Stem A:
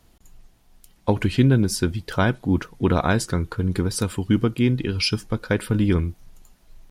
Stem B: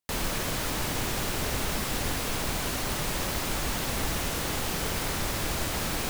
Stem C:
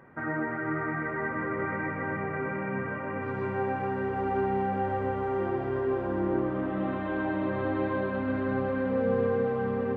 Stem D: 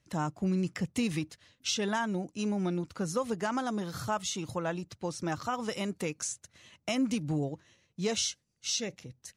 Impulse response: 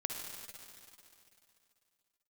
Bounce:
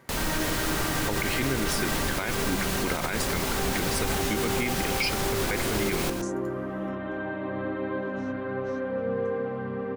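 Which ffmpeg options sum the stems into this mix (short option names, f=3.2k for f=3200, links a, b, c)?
-filter_complex "[0:a]highpass=f=400:p=1,equalizer=f=2.1k:t=o:w=0.4:g=15,volume=-3.5dB,asplit=2[a][b];[1:a]volume=1dB,asplit=2[c][d];[d]volume=-8.5dB[e];[2:a]volume=-2.5dB,asplit=2[f][g];[g]volume=-6dB[h];[3:a]highshelf=f=5.6k:g=-10.5,acompressor=threshold=-36dB:ratio=6,volume=-1dB[i];[b]apad=whole_len=412879[j];[i][j]sidechaingate=range=-21dB:threshold=-60dB:ratio=16:detection=peak[k];[e][h]amix=inputs=2:normalize=0,aecho=0:1:117:1[l];[a][c][f][k][l]amix=inputs=5:normalize=0,alimiter=limit=-16.5dB:level=0:latency=1:release=54"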